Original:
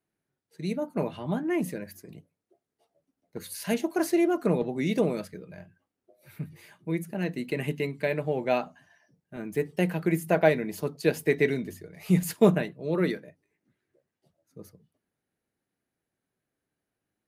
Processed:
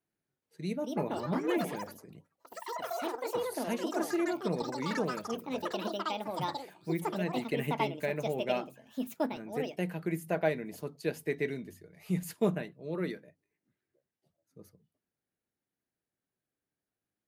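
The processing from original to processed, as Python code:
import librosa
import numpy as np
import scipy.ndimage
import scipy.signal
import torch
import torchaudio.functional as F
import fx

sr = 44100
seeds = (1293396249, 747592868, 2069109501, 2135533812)

y = fx.rider(x, sr, range_db=10, speed_s=2.0)
y = fx.echo_pitch(y, sr, ms=421, semitones=6, count=3, db_per_echo=-3.0)
y = F.gain(torch.from_numpy(y), -7.5).numpy()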